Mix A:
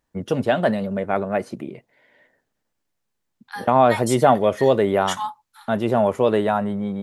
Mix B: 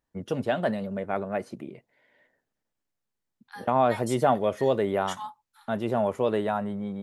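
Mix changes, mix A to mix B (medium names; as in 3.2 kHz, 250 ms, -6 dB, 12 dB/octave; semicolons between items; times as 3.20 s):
first voice -7.0 dB; second voice -10.0 dB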